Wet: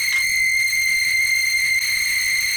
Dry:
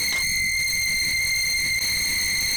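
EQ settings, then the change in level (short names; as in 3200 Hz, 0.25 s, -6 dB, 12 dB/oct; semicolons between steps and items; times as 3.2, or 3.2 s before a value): passive tone stack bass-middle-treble 5-5-5; band shelf 1800 Hz +9 dB; +6.5 dB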